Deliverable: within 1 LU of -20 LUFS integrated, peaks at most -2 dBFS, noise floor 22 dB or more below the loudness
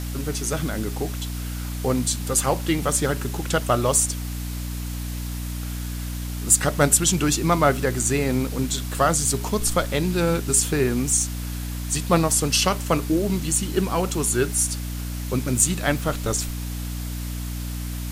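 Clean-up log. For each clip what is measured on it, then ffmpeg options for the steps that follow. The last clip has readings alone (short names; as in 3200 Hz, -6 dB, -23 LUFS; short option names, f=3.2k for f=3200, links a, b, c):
hum 60 Hz; harmonics up to 300 Hz; hum level -27 dBFS; noise floor -30 dBFS; noise floor target -45 dBFS; loudness -23.0 LUFS; peak -1.5 dBFS; loudness target -20.0 LUFS
-> -af "bandreject=f=60:t=h:w=4,bandreject=f=120:t=h:w=4,bandreject=f=180:t=h:w=4,bandreject=f=240:t=h:w=4,bandreject=f=300:t=h:w=4"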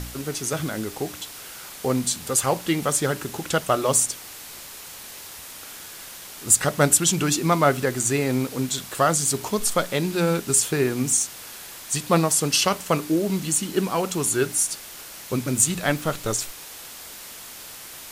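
hum none; noise floor -40 dBFS; noise floor target -44 dBFS
-> -af "afftdn=nr=6:nf=-40"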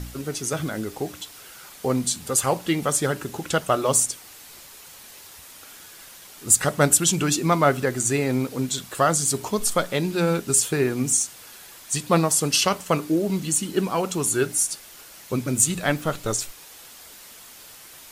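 noise floor -45 dBFS; loudness -22.5 LUFS; peak -2.0 dBFS; loudness target -20.0 LUFS
-> -af "volume=2.5dB,alimiter=limit=-2dB:level=0:latency=1"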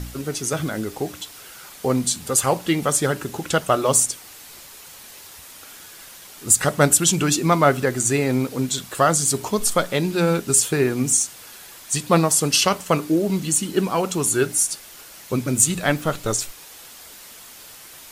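loudness -20.0 LUFS; peak -2.0 dBFS; noise floor -43 dBFS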